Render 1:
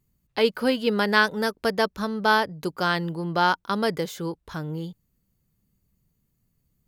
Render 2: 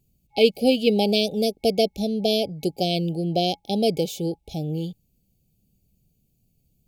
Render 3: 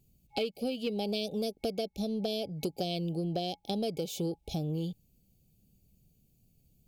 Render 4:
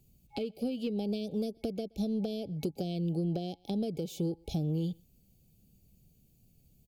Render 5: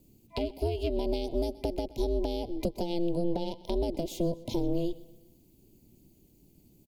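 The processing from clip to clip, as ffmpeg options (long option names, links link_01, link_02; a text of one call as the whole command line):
ffmpeg -i in.wav -af "afftfilt=real='re*(1-between(b*sr/4096,830,2200))':imag='im*(1-between(b*sr/4096,830,2200))':win_size=4096:overlap=0.75,volume=4dB" out.wav
ffmpeg -i in.wav -af "acompressor=threshold=-29dB:ratio=12,asoftclip=type=tanh:threshold=-20dB" out.wav
ffmpeg -i in.wav -filter_complex "[0:a]asplit=2[link_01][link_02];[link_02]adelay=122.4,volume=-30dB,highshelf=frequency=4000:gain=-2.76[link_03];[link_01][link_03]amix=inputs=2:normalize=0,acrossover=split=400[link_04][link_05];[link_05]acompressor=threshold=-46dB:ratio=6[link_06];[link_04][link_06]amix=inputs=2:normalize=0,volume=2.5dB" out.wav
ffmpeg -i in.wav -af "aeval=exprs='val(0)*sin(2*PI*170*n/s)':channel_layout=same,aecho=1:1:125|250|375|500:0.1|0.05|0.025|0.0125,volume=6.5dB" out.wav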